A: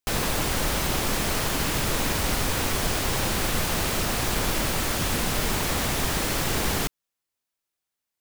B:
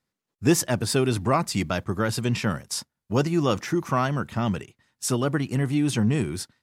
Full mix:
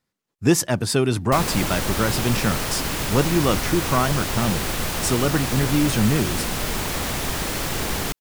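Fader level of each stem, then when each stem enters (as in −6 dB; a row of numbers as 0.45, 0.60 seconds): 0.0, +2.5 decibels; 1.25, 0.00 seconds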